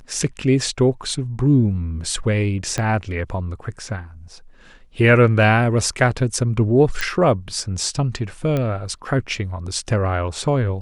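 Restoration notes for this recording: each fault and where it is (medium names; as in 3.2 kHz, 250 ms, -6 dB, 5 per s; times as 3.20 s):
2.78 s: pop -9 dBFS
7.01 s: pop -8 dBFS
8.57 s: pop -11 dBFS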